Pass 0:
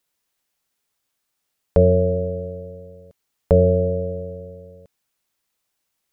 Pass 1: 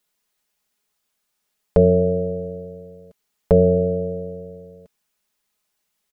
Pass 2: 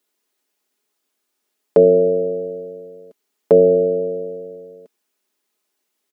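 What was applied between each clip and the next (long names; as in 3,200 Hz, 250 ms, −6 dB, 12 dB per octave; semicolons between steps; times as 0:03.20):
comb filter 4.8 ms, depth 59%
high-pass with resonance 310 Hz, resonance Q 3.7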